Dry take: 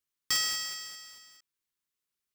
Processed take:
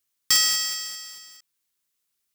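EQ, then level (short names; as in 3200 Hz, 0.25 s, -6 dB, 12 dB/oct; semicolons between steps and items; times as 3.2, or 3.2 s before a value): high shelf 3500 Hz +7 dB; +4.5 dB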